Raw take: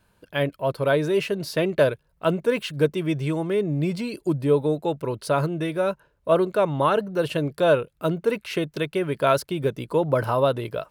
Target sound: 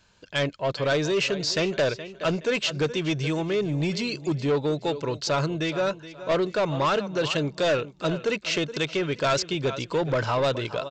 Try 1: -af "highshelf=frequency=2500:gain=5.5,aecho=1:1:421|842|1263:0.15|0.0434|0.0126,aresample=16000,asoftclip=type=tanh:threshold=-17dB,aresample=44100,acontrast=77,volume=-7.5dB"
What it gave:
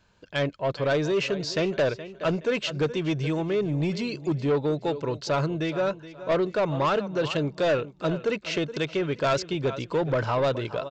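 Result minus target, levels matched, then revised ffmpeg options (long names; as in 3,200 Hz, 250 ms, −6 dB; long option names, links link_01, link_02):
4,000 Hz band −4.0 dB
-af "highshelf=frequency=2500:gain=14.5,aecho=1:1:421|842|1263:0.15|0.0434|0.0126,aresample=16000,asoftclip=type=tanh:threshold=-17dB,aresample=44100,acontrast=77,volume=-7.5dB"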